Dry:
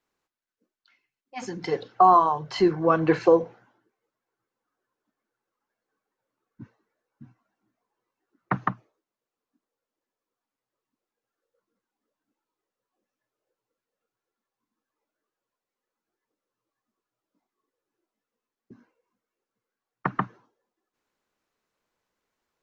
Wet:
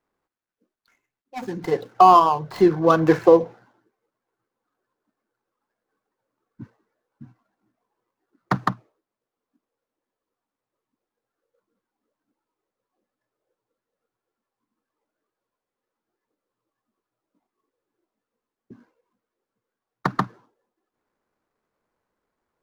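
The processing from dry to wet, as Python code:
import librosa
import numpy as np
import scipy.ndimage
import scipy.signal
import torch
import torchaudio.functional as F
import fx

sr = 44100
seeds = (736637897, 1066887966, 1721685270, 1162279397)

y = scipy.signal.medfilt(x, 15)
y = y * librosa.db_to_amplitude(4.5)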